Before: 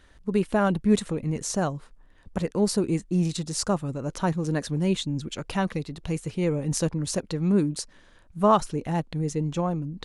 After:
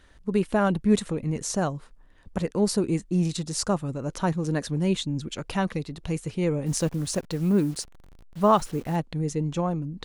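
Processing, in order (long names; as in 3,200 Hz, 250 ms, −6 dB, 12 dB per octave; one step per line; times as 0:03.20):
0:06.66–0:08.96: hold until the input has moved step −43 dBFS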